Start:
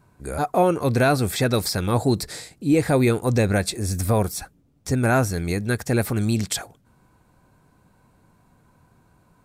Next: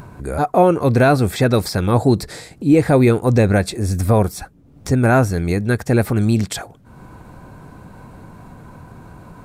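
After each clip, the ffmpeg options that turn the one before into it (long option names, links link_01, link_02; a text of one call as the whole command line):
ffmpeg -i in.wav -af "highshelf=frequency=2600:gain=-8.5,acompressor=mode=upward:threshold=-32dB:ratio=2.5,volume=6dB" out.wav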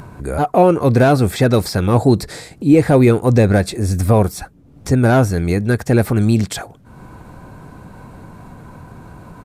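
ffmpeg -i in.wav -filter_complex "[0:a]acrossover=split=800[link_01][link_02];[link_02]asoftclip=type=tanh:threshold=-19dB[link_03];[link_01][link_03]amix=inputs=2:normalize=0,aresample=32000,aresample=44100,volume=2dB" out.wav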